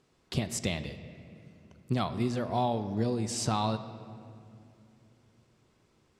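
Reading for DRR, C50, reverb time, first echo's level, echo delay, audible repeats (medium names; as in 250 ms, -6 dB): 10.0 dB, 11.5 dB, 2.6 s, no echo, no echo, no echo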